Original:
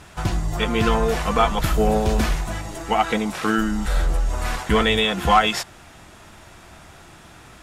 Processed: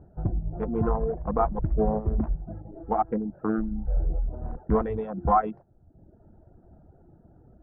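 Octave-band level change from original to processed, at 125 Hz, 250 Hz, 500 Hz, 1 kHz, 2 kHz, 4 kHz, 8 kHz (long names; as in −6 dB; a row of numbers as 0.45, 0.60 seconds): −5.0 dB, −5.5 dB, −6.0 dB, −6.5 dB, −22.5 dB, below −40 dB, below −40 dB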